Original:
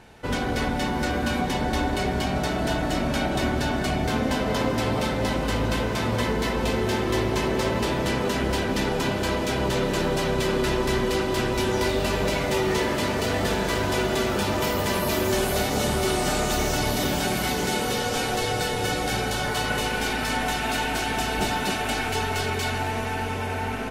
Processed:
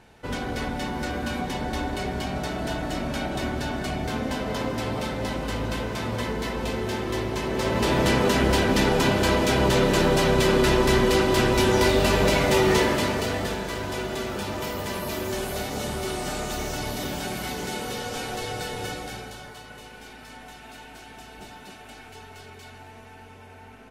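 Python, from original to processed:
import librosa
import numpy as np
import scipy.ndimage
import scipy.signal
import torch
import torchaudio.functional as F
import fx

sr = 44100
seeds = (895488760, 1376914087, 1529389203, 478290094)

y = fx.gain(x, sr, db=fx.line((7.44, -4.0), (7.98, 4.0), (12.76, 4.0), (13.66, -6.0), (18.84, -6.0), (19.64, -18.0)))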